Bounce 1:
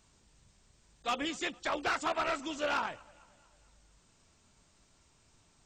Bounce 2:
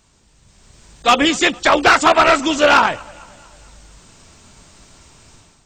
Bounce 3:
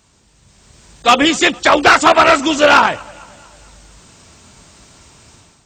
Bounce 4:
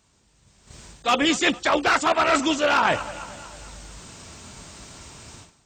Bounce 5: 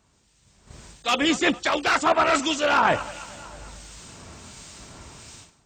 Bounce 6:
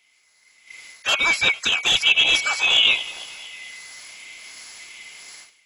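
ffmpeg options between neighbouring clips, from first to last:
-af "dynaudnorm=f=410:g=3:m=3.76,volume=2.82"
-af "highpass=48,volume=1.33"
-af "agate=range=0.316:threshold=0.00501:ratio=16:detection=peak,areverse,acompressor=threshold=0.112:ratio=8,areverse,volume=1.19"
-filter_complex "[0:a]acrossover=split=1900[s0][s1];[s0]aeval=exprs='val(0)*(1-0.5/2+0.5/2*cos(2*PI*1.4*n/s))':c=same[s2];[s1]aeval=exprs='val(0)*(1-0.5/2-0.5/2*cos(2*PI*1.4*n/s))':c=same[s3];[s2][s3]amix=inputs=2:normalize=0,volume=1.19"
-af "afftfilt=real='real(if(lt(b,920),b+92*(1-2*mod(floor(b/92),2)),b),0)':imag='imag(if(lt(b,920),b+92*(1-2*mod(floor(b/92),2)),b),0)':win_size=2048:overlap=0.75,tiltshelf=f=750:g=-5.5,volume=0.794"

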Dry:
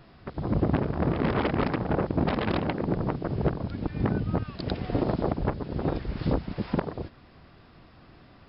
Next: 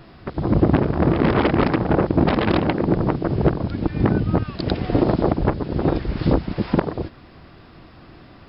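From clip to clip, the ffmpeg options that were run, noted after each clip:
-af "equalizer=f=330:w=5.1:g=4,volume=2.37"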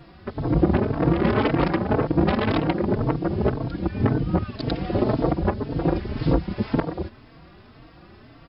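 -filter_complex "[0:a]asplit=2[s0][s1];[s1]adelay=3.9,afreqshift=1.9[s2];[s0][s2]amix=inputs=2:normalize=1"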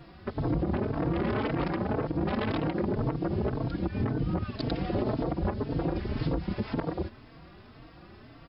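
-af "alimiter=limit=0.133:level=0:latency=1:release=79,volume=0.75"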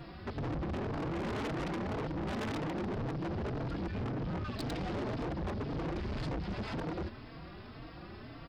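-af "asoftclip=type=tanh:threshold=0.0141,volume=1.41"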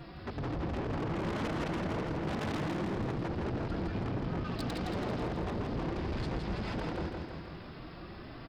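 -af "aecho=1:1:165|330|495|660|825|990|1155|1320:0.596|0.34|0.194|0.11|0.0629|0.0358|0.0204|0.0116"

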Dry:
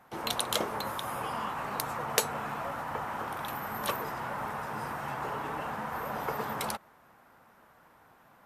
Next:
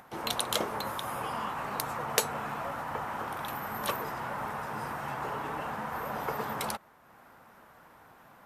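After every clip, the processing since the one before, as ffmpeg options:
-af "acompressor=mode=upward:threshold=0.00355:ratio=2.5"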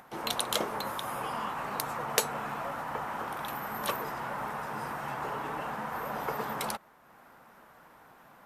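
-af "equalizer=f=89:t=o:w=0.52:g=-9.5"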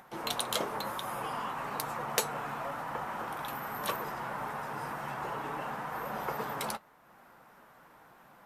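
-filter_complex "[0:a]asplit=2[s0][s1];[s1]asoftclip=type=hard:threshold=0.0794,volume=0.355[s2];[s0][s2]amix=inputs=2:normalize=0,flanger=delay=5.1:depth=2.7:regen=-60:speed=0.97:shape=triangular"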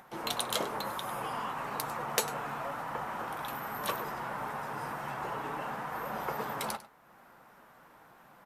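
-af "aecho=1:1:99:0.15"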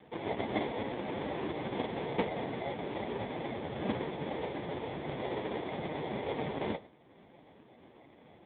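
-af "acrusher=samples=32:mix=1:aa=0.000001,volume=1.5" -ar 8000 -c:a libopencore_amrnb -b:a 5150

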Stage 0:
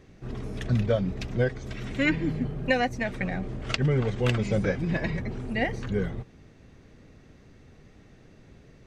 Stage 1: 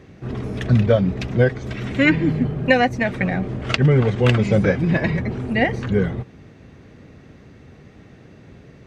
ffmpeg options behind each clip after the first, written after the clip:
-af "highpass=70,bass=f=250:g=1,treble=f=4000:g=-6,volume=2.66"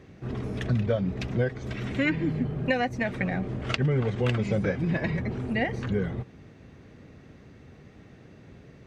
-af "acompressor=threshold=0.1:ratio=2,volume=0.562"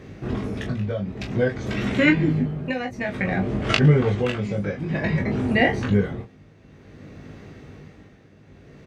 -filter_complex "[0:a]tremolo=f=0.54:d=0.7,asplit=2[s0][s1];[s1]aecho=0:1:20|39:0.668|0.355[s2];[s0][s2]amix=inputs=2:normalize=0,volume=2.24"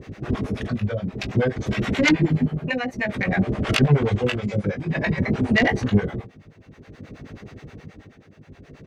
-filter_complex "[0:a]aeval=exprs='0.708*sin(PI/2*2.51*val(0)/0.708)':c=same,acrossover=split=540[s0][s1];[s0]aeval=exprs='val(0)*(1-1/2+1/2*cos(2*PI*9.4*n/s))':c=same[s2];[s1]aeval=exprs='val(0)*(1-1/2-1/2*cos(2*PI*9.4*n/s))':c=same[s3];[s2][s3]amix=inputs=2:normalize=0,volume=0.531"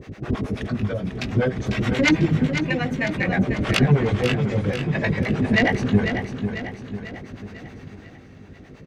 -af "aecho=1:1:496|992|1488|1984|2480|2976:0.398|0.203|0.104|0.0528|0.0269|0.0137"

